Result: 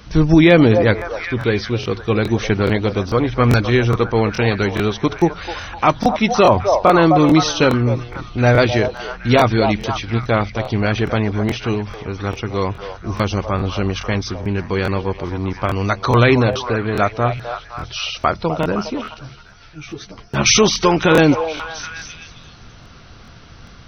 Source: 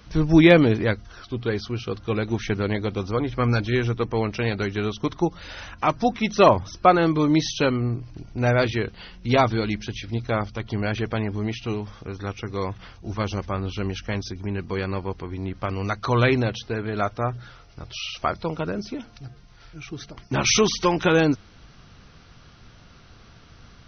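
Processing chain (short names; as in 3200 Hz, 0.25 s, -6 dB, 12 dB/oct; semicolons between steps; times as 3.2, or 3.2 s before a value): delay with a stepping band-pass 0.257 s, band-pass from 670 Hz, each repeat 0.7 oct, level -6.5 dB; maximiser +8.5 dB; crackling interface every 0.42 s, samples 1024, repeat, from 0.97; 19.14–20.46 ensemble effect; gain -1 dB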